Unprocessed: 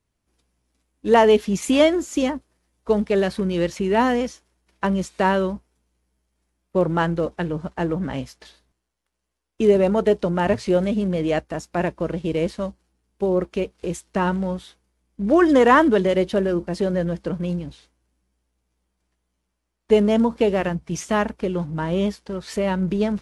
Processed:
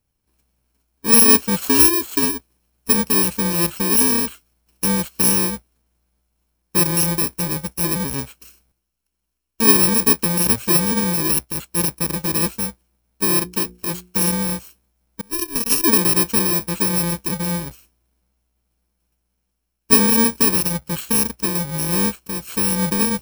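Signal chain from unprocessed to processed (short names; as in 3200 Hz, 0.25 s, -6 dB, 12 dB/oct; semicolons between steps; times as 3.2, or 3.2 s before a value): FFT order left unsorted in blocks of 64 samples; 13.36–14.2 notches 60/120/180/240/300/360/420/480 Hz; 15.21–15.84 power-law curve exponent 3; gain +2.5 dB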